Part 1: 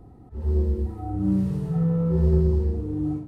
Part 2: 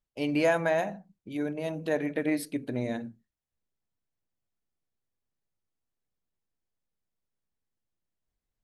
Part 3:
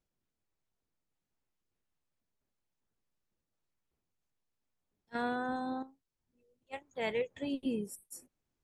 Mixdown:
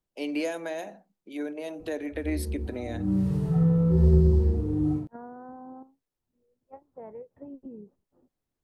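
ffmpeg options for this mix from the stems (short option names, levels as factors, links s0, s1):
-filter_complex "[0:a]adelay=1800,volume=1.12[s0];[1:a]highpass=f=270:w=0.5412,highpass=f=270:w=1.3066,volume=1,asplit=2[s1][s2];[2:a]lowpass=f=1100:w=0.5412,lowpass=f=1100:w=1.3066,acompressor=threshold=0.00891:ratio=4,volume=1[s3];[s2]apad=whole_len=223641[s4];[s0][s4]sidechaincompress=threshold=0.0158:ratio=10:attack=16:release=698[s5];[s5][s1][s3]amix=inputs=3:normalize=0,acrossover=split=440|3000[s6][s7][s8];[s7]acompressor=threshold=0.0141:ratio=6[s9];[s6][s9][s8]amix=inputs=3:normalize=0"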